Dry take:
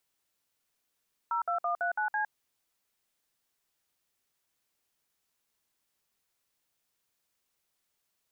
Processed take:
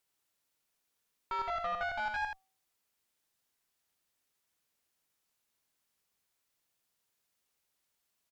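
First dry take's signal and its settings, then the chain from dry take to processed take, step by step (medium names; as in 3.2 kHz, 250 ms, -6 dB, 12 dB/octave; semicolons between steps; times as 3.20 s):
DTMF "02139C", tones 109 ms, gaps 57 ms, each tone -30 dBFS
de-hum 382.5 Hz, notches 3; valve stage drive 30 dB, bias 0.55; delay 81 ms -5 dB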